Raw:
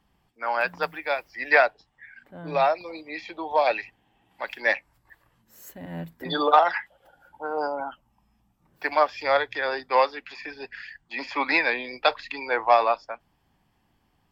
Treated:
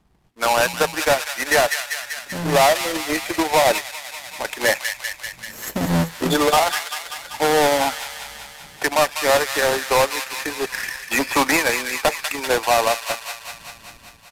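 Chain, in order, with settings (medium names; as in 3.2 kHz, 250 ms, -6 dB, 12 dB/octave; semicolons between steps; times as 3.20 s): square wave that keeps the level; in parallel at -12 dB: sample-rate reducer 3.9 kHz; on the sum: level rider gain up to 11.5 dB; saturation -7.5 dBFS, distortion -15 dB; resampled via 32 kHz; transient shaper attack +5 dB, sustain -4 dB; on a send: feedback echo behind a high-pass 194 ms, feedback 68%, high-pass 1.6 kHz, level -7.5 dB; 3.78–4.45 s: on the sum: compression, threshold -25 dBFS, peak gain reduction 11.5 dB; loudness maximiser +7 dB; trim -8.5 dB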